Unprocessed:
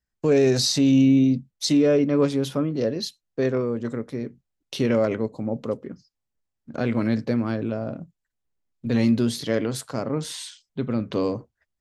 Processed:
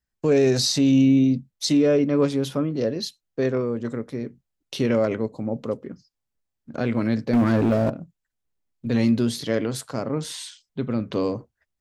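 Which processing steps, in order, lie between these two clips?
7.33–7.9 sample leveller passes 3

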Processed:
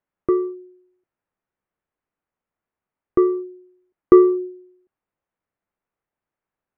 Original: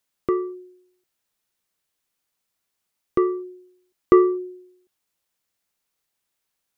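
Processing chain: dynamic EQ 320 Hz, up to +4 dB, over -30 dBFS, Q 2.4; Gaussian blur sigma 4.5 samples; gain +1.5 dB

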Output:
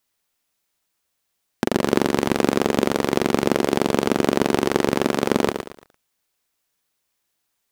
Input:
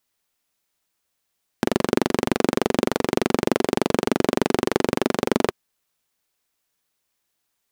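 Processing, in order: lo-fi delay 0.114 s, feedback 35%, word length 7-bit, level -7.5 dB; gain +1 dB

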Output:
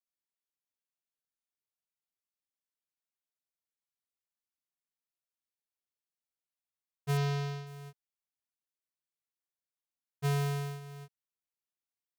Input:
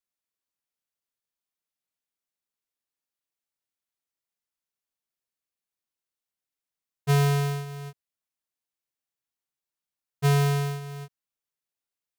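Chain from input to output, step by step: 7.17–7.67 resonant high shelf 7100 Hz -11.5 dB, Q 1.5; gain -9 dB

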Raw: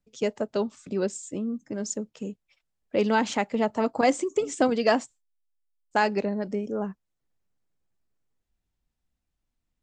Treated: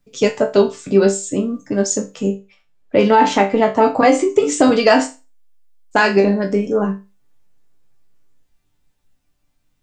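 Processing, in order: 2.28–4.42 high shelf 4300 Hz -10 dB; resonator bank G2 sus4, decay 0.27 s; maximiser +27 dB; gain -1 dB

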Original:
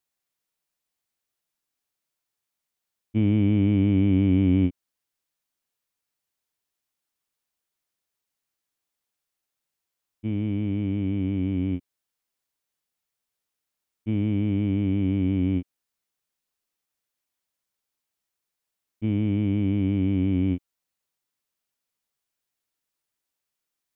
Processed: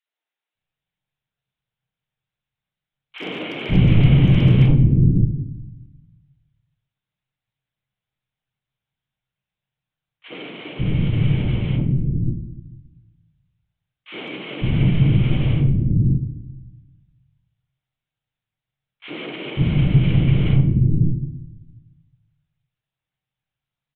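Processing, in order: spectral whitening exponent 0.6; HPF 62 Hz 6 dB/oct; comb 5 ms, depth 84%; LPC vocoder at 8 kHz whisper; hard clip -12 dBFS, distortion -30 dB; bell 130 Hz +13.5 dB 0.73 oct; three bands offset in time highs, mids, lows 60/550 ms, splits 340/1100 Hz; shoebox room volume 320 m³, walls mixed, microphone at 0.52 m

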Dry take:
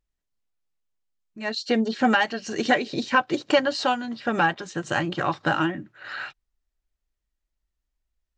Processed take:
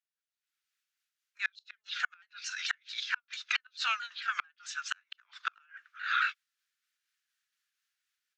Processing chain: repeated pitch sweeps -3 st, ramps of 0.222 s; AGC gain up to 16.5 dB; Chebyshev high-pass 1400 Hz, order 4; high shelf 4800 Hz -5 dB; flipped gate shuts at -12 dBFS, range -39 dB; gain -4.5 dB

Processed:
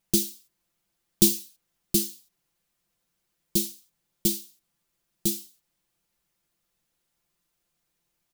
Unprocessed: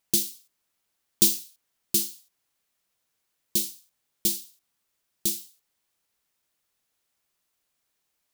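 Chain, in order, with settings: low shelf 310 Hz +11.5 dB; comb 5.8 ms; gain -2.5 dB

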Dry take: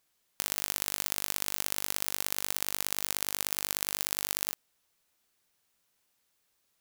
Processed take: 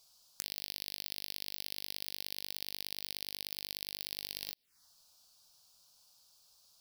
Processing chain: bell 4800 Hz +13.5 dB 0.76 oct; compressor 6:1, threshold -38 dBFS, peak gain reduction 16.5 dB; envelope phaser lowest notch 280 Hz, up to 1300 Hz, full sweep at -49.5 dBFS; gain +6.5 dB

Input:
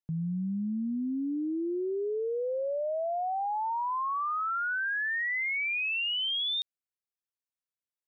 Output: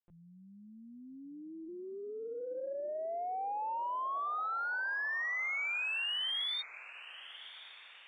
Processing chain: HPF 550 Hz 12 dB/oct; LPC vocoder at 8 kHz pitch kept; added harmonics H 3 -31 dB, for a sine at -26 dBFS; diffused feedback echo 1.085 s, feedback 46%, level -15.5 dB; gain -4.5 dB

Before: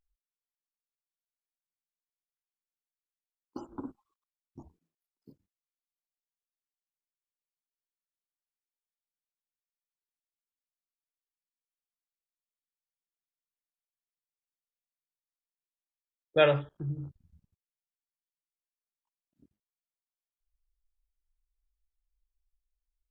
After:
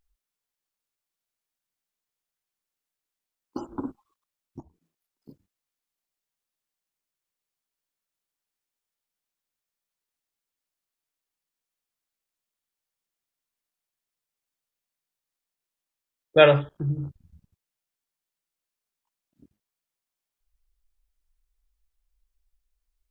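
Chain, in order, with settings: 4.6–5.29 compressor 10:1, threshold -59 dBFS, peak gain reduction 12 dB; gain +7.5 dB

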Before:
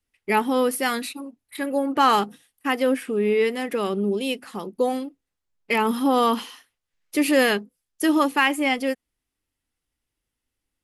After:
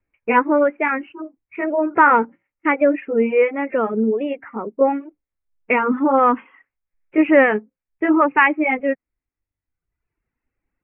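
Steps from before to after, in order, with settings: gliding pitch shift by +2.5 st ending unshifted; steep low-pass 2500 Hz 72 dB/oct; reverb removal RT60 1.1 s; gain +7 dB

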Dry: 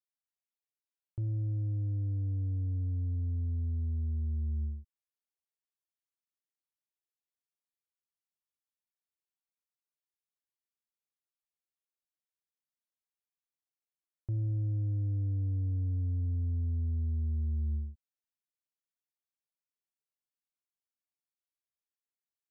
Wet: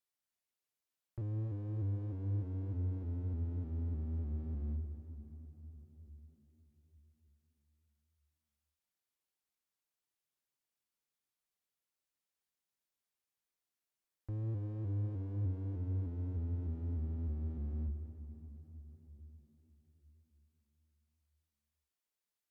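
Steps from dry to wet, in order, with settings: limiter -35.5 dBFS, peak gain reduction 6.5 dB; one-sided clip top -42.5 dBFS, bottom -37 dBFS; on a send at -8.5 dB: reverb RT60 4.4 s, pre-delay 0.107 s; on the sum: shaped vibrato saw up 3.3 Hz, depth 100 cents; gain +2.5 dB

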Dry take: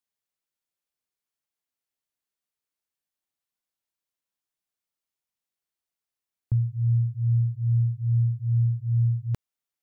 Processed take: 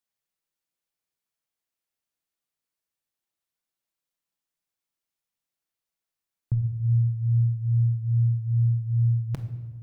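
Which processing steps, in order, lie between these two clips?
shoebox room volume 820 m³, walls mixed, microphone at 0.69 m

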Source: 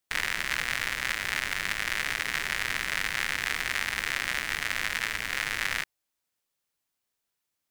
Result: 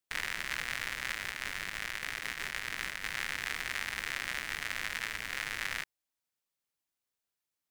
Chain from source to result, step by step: 1.31–3.02 negative-ratio compressor -32 dBFS, ratio -0.5; gain -6.5 dB

